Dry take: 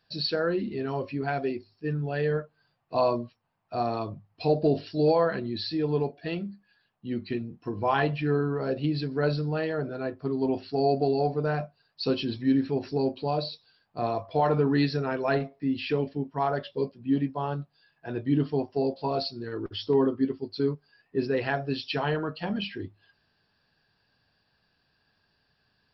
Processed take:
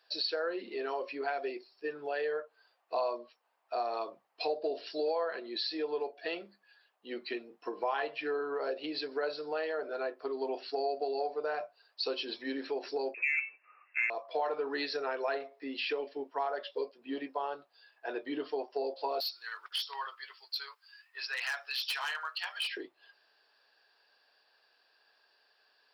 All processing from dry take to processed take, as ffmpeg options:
ffmpeg -i in.wav -filter_complex "[0:a]asettb=1/sr,asplit=3[link_01][link_02][link_03];[link_01]atrim=end=13.144[link_04];[link_02]atrim=start=13.14:end=14.1,asetpts=PTS-STARTPTS,afade=type=in:duration=0.004:curve=qsin,afade=type=out:start_time=0.956:duration=0.004:curve=qsin,lowpass=frequency=2400:width_type=q:width=0.5098,lowpass=frequency=2400:width_type=q:width=0.6013,lowpass=frequency=2400:width_type=q:width=0.9,lowpass=frequency=2400:width_type=q:width=2.563,afreqshift=-2800,acontrast=58[link_05];[link_03]atrim=start=14.096[link_06];[link_04][link_05]acrossfade=duration=0.004:curve1=hsin:curve2=qsin[link_07];[link_07][link_06]acrossfade=duration=0.004:curve1=qsin:curve2=hsin,asettb=1/sr,asplit=3[link_08][link_09][link_10];[link_08]atrim=end=19.204[link_11];[link_09]atrim=start=19.2:end=22.77,asetpts=PTS-STARTPTS,afade=type=in:duration=0.004:curve=qsin,afade=type=out:start_time=3.566:duration=0.004:curve=qsin,highpass=frequency=1100:width=0.5412,highpass=frequency=1100:width=1.3066,highshelf=frequency=2900:gain=7.5,asoftclip=type=hard:threshold=-29dB[link_12];[link_10]atrim=start=22.766[link_13];[link_11][link_12]acrossfade=duration=0.004:curve1=hsin:curve2=qsin[link_14];[link_14][link_13]acrossfade=duration=0.004:curve1=qsin:curve2=hsin,highpass=frequency=430:width=0.5412,highpass=frequency=430:width=1.3066,acompressor=threshold=-36dB:ratio=3,volume=3dB" out.wav

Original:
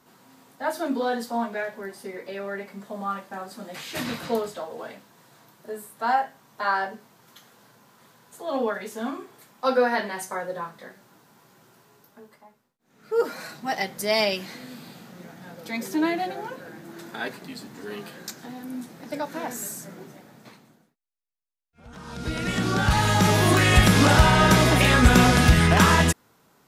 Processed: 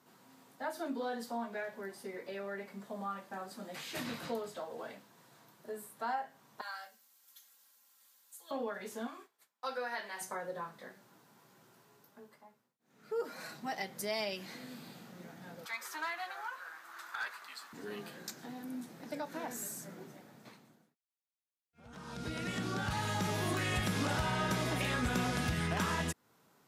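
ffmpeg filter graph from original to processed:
ffmpeg -i in.wav -filter_complex "[0:a]asettb=1/sr,asplit=3[link_01][link_02][link_03];[link_01]atrim=end=6.614[link_04];[link_02]atrim=start=6.61:end=8.51,asetpts=PTS-STARTPTS,afade=type=in:duration=0.004:curve=qsin,afade=type=out:start_time=1.896:duration=0.004:curve=qsin,aderivative,aecho=1:1:3.7:0.83,atrim=end_sample=83790[link_05];[link_03]atrim=start=8.506[link_06];[link_04][link_05]acrossfade=duration=0.004:curve1=hsin:curve2=qsin[link_07];[link_07][link_06]acrossfade=duration=0.004:curve1=qsin:curve2=hsin,asettb=1/sr,asplit=3[link_08][link_09][link_10];[link_08]atrim=end=9.074[link_11];[link_09]atrim=start=9.07:end=10.21,asetpts=PTS-STARTPTS,afade=type=in:duration=0.004:curve=qsin,afade=type=out:start_time=1.136:duration=0.004:curve=qsin,highpass=frequency=1100:poles=1,agate=range=-33dB:threshold=-47dB:ratio=3:release=100:detection=peak[link_12];[link_10]atrim=start=10.206[link_13];[link_11][link_12]acrossfade=duration=0.004:curve1=hsin:curve2=qsin[link_14];[link_14][link_13]acrossfade=duration=0.004:curve1=qsin:curve2=hsin,asettb=1/sr,asplit=3[link_15][link_16][link_17];[link_15]atrim=end=15.654[link_18];[link_16]atrim=start=15.65:end=17.73,asetpts=PTS-STARTPTS,afade=type=in:duration=0.004:curve=qsin,afade=type=out:start_time=2.076:duration=0.004:curve=qsin,highpass=frequency=1200:width_type=q:width=3.6,volume=21dB,asoftclip=hard,volume=-21dB[link_19];[link_17]atrim=start=17.726[link_20];[link_18][link_19]acrossfade=duration=0.004:curve1=hsin:curve2=qsin[link_21];[link_21][link_20]acrossfade=duration=0.004:curve1=qsin:curve2=hsin,highpass=85,acompressor=threshold=-31dB:ratio=2,volume=-7dB" out.wav

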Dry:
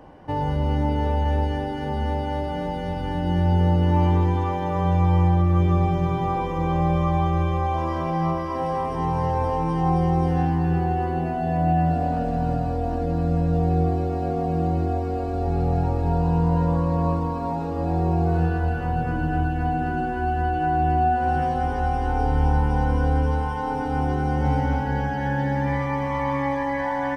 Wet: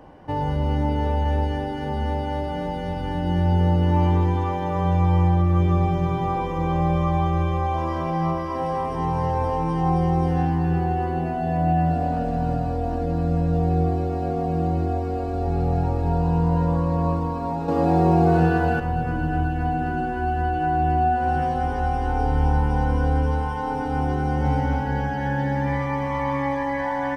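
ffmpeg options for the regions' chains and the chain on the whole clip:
ffmpeg -i in.wav -filter_complex "[0:a]asettb=1/sr,asplit=3[link_01][link_02][link_03];[link_01]atrim=end=17.684[link_04];[link_02]atrim=start=17.68:end=18.8,asetpts=PTS-STARTPTS,afade=type=in:duration=0.004:curve=qsin,afade=type=out:start_time=1.116:duration=0.004:curve=qsin,highpass=140,acontrast=87[link_05];[link_03]atrim=start=18.796[link_06];[link_04][link_05]acrossfade=duration=0.004:curve1=hsin:curve2=qsin[link_07];[link_07][link_06]acrossfade=duration=0.004:curve1=qsin:curve2=hsin" out.wav

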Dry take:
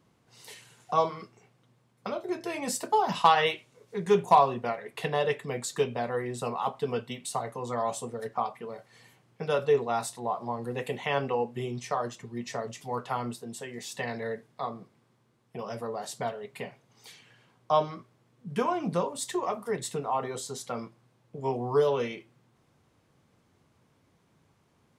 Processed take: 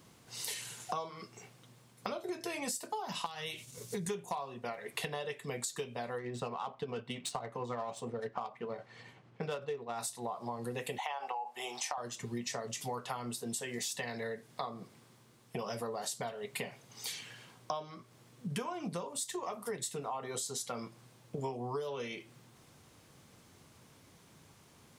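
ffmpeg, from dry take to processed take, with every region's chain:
ffmpeg -i in.wav -filter_complex "[0:a]asettb=1/sr,asplit=3[link_01][link_02][link_03];[link_01]atrim=end=3.264[link_04];[link_02]atrim=start=3.26:end=4.09,asetpts=PTS-STARTPTS,afade=type=in:duration=0.004:curve=qsin,afade=type=out:start_time=0.826:duration=0.004:curve=qsin,bass=frequency=250:gain=12,treble=frequency=4000:gain=12,acompressor=threshold=-36dB:ratio=2:attack=3.2:release=140:knee=1:detection=peak,agate=range=-33dB:threshold=-52dB:ratio=3:release=100:detection=peak[link_05];[link_03]atrim=start=4.086[link_06];[link_04][link_05]acrossfade=duration=0.004:curve1=hsin:curve2=qsin[link_07];[link_07][link_06]acrossfade=duration=0.004:curve1=qsin:curve2=hsin,asettb=1/sr,asplit=3[link_08][link_09][link_10];[link_08]atrim=end=6.184[link_11];[link_09]atrim=start=6.18:end=9.99,asetpts=PTS-STARTPTS,afade=type=in:duration=0.004:curve=qsin,afade=type=out:start_time=3.806:duration=0.004:curve=qsin,tremolo=f=11:d=0.32,adynamicsmooth=sensitivity=5.5:basefreq=2700[link_12];[link_10]atrim=start=9.986[link_13];[link_11][link_12]acrossfade=duration=0.004:curve1=hsin:curve2=qsin[link_14];[link_14][link_13]acrossfade=duration=0.004:curve1=qsin:curve2=hsin,asettb=1/sr,asplit=3[link_15][link_16][link_17];[link_15]atrim=end=10.984[link_18];[link_16]atrim=start=10.98:end=11.98,asetpts=PTS-STARTPTS,afade=type=in:duration=0.004:curve=qsin,afade=type=out:start_time=0.996:duration=0.004:curve=qsin,highpass=frequency=810:width_type=q:width=7.4,acompressor=threshold=-22dB:ratio=10:attack=3.2:release=140:knee=1:detection=peak[link_19];[link_17]atrim=start=11.976[link_20];[link_18][link_19]acrossfade=duration=0.004:curve1=hsin:curve2=qsin[link_21];[link_21][link_20]acrossfade=duration=0.004:curve1=qsin:curve2=hsin,highshelf=frequency=3200:gain=10.5,acompressor=threshold=-40dB:ratio=16,volume=5dB" out.wav

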